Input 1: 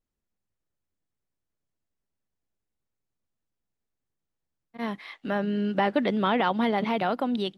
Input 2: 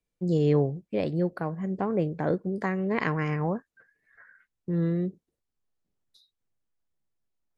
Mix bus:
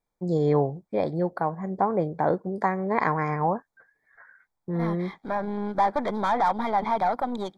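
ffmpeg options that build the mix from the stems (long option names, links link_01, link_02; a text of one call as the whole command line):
ffmpeg -i stem1.wav -i stem2.wav -filter_complex "[0:a]aeval=exprs='(tanh(17.8*val(0)+0.65)-tanh(0.65))/17.8':channel_layout=same,volume=-1.5dB[link_01];[1:a]volume=-2dB[link_02];[link_01][link_02]amix=inputs=2:normalize=0,asuperstop=centerf=2800:order=12:qfactor=3.9,equalizer=frequency=860:width_type=o:width=1.1:gain=13.5" out.wav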